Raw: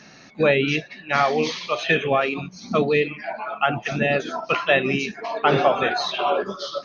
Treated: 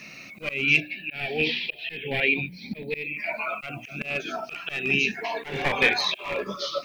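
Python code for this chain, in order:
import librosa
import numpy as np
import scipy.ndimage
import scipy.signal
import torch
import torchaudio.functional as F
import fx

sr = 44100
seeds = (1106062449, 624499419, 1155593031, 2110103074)

y = np.minimum(x, 2.0 * 10.0 ** (-16.0 / 20.0) - x)
y = fx.peak_eq(y, sr, hz=2400.0, db=14.5, octaves=0.57)
y = fx.hum_notches(y, sr, base_hz=60, count=5)
y = fx.auto_swell(y, sr, attack_ms=400.0)
y = fx.dmg_noise_colour(y, sr, seeds[0], colour='blue', level_db=-66.0)
y = fx.fixed_phaser(y, sr, hz=2800.0, stages=4, at=(0.8, 3.17))
y = fx.notch_cascade(y, sr, direction='rising', hz=0.3)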